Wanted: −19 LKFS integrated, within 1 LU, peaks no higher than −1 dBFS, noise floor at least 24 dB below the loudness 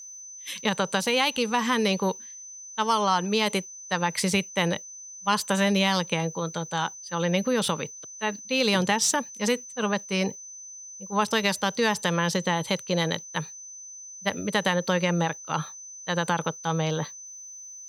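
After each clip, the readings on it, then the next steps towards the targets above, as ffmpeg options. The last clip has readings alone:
interfering tone 6,100 Hz; level of the tone −40 dBFS; integrated loudness −26.0 LKFS; sample peak −7.0 dBFS; target loudness −19.0 LKFS
→ -af "bandreject=frequency=6100:width=30"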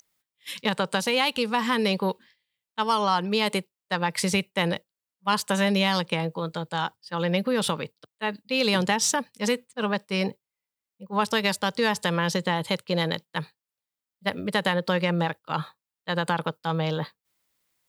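interfering tone none found; integrated loudness −26.0 LKFS; sample peak −7.0 dBFS; target loudness −19.0 LKFS
→ -af "volume=7dB,alimiter=limit=-1dB:level=0:latency=1"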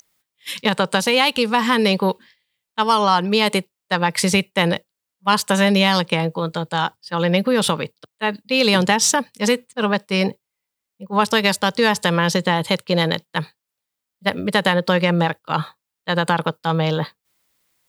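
integrated loudness −19.0 LKFS; sample peak −1.0 dBFS; background noise floor −83 dBFS

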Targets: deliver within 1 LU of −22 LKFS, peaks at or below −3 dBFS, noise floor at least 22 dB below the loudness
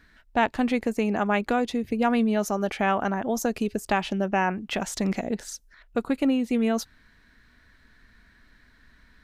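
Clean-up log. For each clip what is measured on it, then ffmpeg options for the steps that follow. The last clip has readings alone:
integrated loudness −26.0 LKFS; sample peak −10.5 dBFS; target loudness −22.0 LKFS
→ -af "volume=4dB"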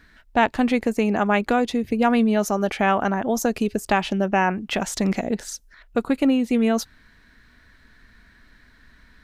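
integrated loudness −22.0 LKFS; sample peak −6.5 dBFS; background noise floor −55 dBFS

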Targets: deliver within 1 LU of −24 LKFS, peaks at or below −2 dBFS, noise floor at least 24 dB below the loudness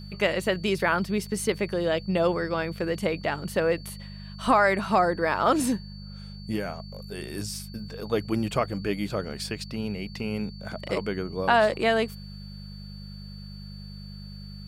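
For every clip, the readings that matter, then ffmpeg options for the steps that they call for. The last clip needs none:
mains hum 50 Hz; hum harmonics up to 200 Hz; level of the hum −38 dBFS; interfering tone 4,500 Hz; level of the tone −48 dBFS; integrated loudness −27.0 LKFS; sample peak −9.5 dBFS; target loudness −24.0 LKFS
→ -af "bandreject=frequency=50:width_type=h:width=4,bandreject=frequency=100:width_type=h:width=4,bandreject=frequency=150:width_type=h:width=4,bandreject=frequency=200:width_type=h:width=4"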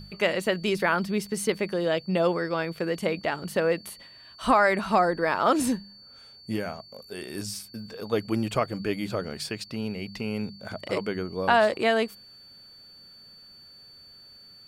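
mains hum none found; interfering tone 4,500 Hz; level of the tone −48 dBFS
→ -af "bandreject=frequency=4500:width=30"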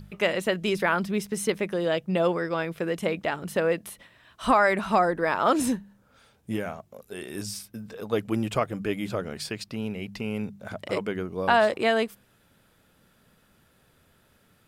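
interfering tone none found; integrated loudness −27.0 LKFS; sample peak −9.5 dBFS; target loudness −24.0 LKFS
→ -af "volume=3dB"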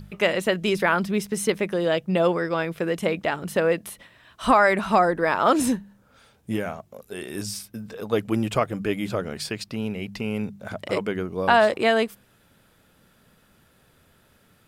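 integrated loudness −24.0 LKFS; sample peak −6.5 dBFS; background noise floor −60 dBFS

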